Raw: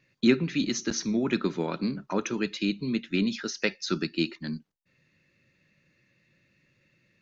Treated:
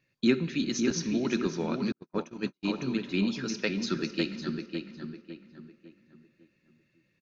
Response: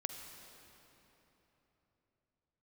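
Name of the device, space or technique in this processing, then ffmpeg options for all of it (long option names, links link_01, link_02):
keyed gated reverb: -filter_complex "[0:a]asplit=3[link_01][link_02][link_03];[1:a]atrim=start_sample=2205[link_04];[link_02][link_04]afir=irnorm=-1:irlink=0[link_05];[link_03]apad=whole_len=317961[link_06];[link_05][link_06]sidechaingate=range=-33dB:threshold=-44dB:ratio=16:detection=peak,volume=-4dB[link_07];[link_01][link_07]amix=inputs=2:normalize=0,bandreject=frequency=2000:width=17,asplit=2[link_08][link_09];[link_09]adelay=554,lowpass=frequency=2700:poles=1,volume=-5dB,asplit=2[link_10][link_11];[link_11]adelay=554,lowpass=frequency=2700:poles=1,volume=0.38,asplit=2[link_12][link_13];[link_13]adelay=554,lowpass=frequency=2700:poles=1,volume=0.38,asplit=2[link_14][link_15];[link_15]adelay=554,lowpass=frequency=2700:poles=1,volume=0.38,asplit=2[link_16][link_17];[link_17]adelay=554,lowpass=frequency=2700:poles=1,volume=0.38[link_18];[link_08][link_10][link_12][link_14][link_16][link_18]amix=inputs=6:normalize=0,asettb=1/sr,asplit=3[link_19][link_20][link_21];[link_19]atrim=end=1.924[link_22];[link_20]atrim=start=1.92:end=2.65,asetpts=PTS-STARTPTS,afade=type=in:duration=0.004:curve=qsin,afade=type=out:start_time=0.726:duration=0.004:curve=qsin,agate=range=-50dB:threshold=-22dB:ratio=16:detection=peak[link_23];[link_21]atrim=start=2.646[link_24];[link_22][link_23]acrossfade=duration=0.004:curve1=hsin:curve2=qsin[link_25];[link_25][link_24]acrossfade=duration=0.004:curve1=qsin:curve2=hsin,volume=-6.5dB"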